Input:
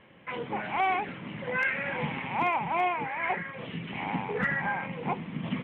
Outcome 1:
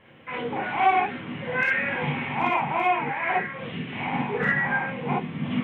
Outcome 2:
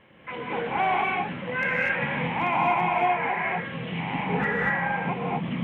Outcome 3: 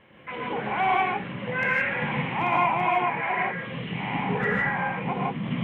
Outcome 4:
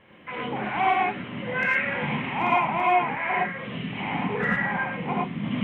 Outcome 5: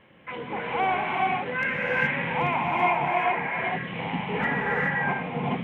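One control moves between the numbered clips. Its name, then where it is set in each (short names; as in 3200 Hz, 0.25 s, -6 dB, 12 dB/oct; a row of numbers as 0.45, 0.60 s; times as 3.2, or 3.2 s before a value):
non-linear reverb, gate: 80, 270, 190, 130, 450 ms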